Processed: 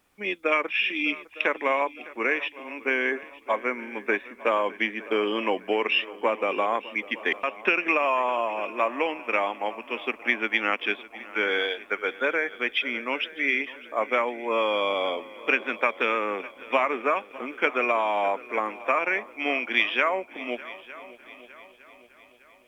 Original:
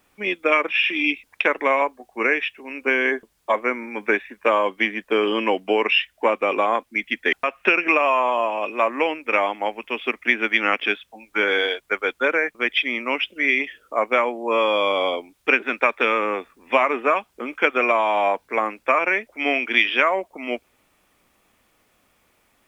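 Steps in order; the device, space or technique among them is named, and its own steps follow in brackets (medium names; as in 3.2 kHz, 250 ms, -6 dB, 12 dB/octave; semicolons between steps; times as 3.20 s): multi-head tape echo (multi-head delay 303 ms, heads second and third, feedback 47%, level -19.5 dB; wow and flutter 14 cents); trim -5 dB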